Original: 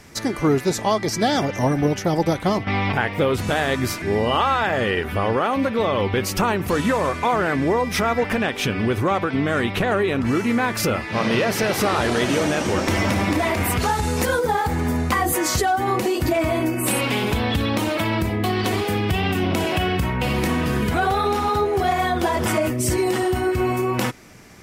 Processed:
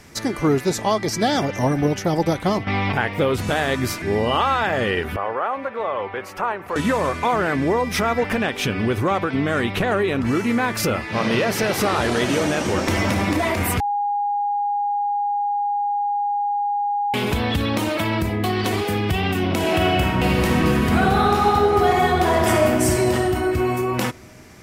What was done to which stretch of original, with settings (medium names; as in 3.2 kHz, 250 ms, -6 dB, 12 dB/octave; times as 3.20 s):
5.16–6.76 s: three-band isolator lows -18 dB, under 490 Hz, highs -17 dB, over 2 kHz
13.80–17.14 s: bleep 818 Hz -19 dBFS
19.57–22.92 s: reverb throw, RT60 2.9 s, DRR 0 dB